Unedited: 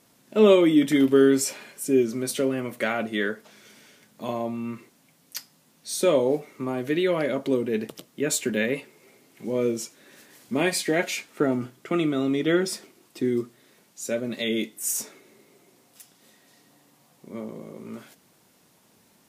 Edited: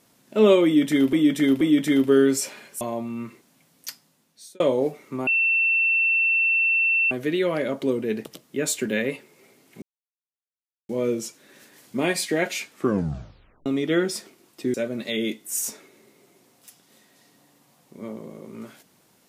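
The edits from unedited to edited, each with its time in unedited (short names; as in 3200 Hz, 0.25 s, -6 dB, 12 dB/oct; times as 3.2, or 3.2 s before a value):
0.65–1.13 loop, 3 plays
1.85–4.29 cut
5.36–6.08 fade out
6.75 add tone 2690 Hz -17.5 dBFS 1.84 s
9.46 insert silence 1.07 s
11.3 tape stop 0.93 s
13.31–14.06 cut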